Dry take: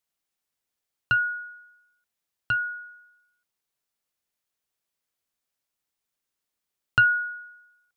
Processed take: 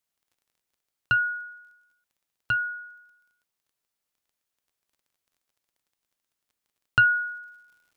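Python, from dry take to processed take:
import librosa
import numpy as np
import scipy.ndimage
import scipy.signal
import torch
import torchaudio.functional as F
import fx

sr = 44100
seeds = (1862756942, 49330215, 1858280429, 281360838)

y = fx.dmg_crackle(x, sr, seeds[0], per_s=fx.steps((0.0, 18.0), (7.15, 200.0)), level_db=-55.0)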